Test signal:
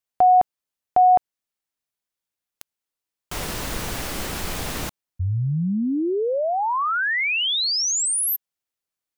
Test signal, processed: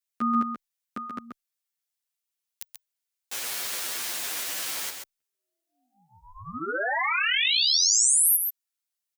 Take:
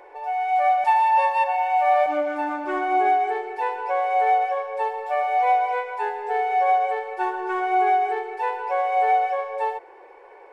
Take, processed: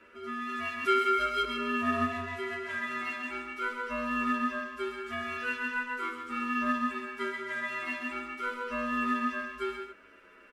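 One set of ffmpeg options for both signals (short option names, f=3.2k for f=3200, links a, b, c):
-filter_complex "[0:a]highpass=f=900:w=0.5412,highpass=f=900:w=1.3066,highshelf=f=3k:g=8,aeval=exprs='val(0)*sin(2*PI*500*n/s)':c=same,asplit=2[a][b];[b]aecho=0:1:133:0.501[c];[a][c]amix=inputs=2:normalize=0,asplit=2[d][e];[e]adelay=10,afreqshift=-0.43[f];[d][f]amix=inputs=2:normalize=1"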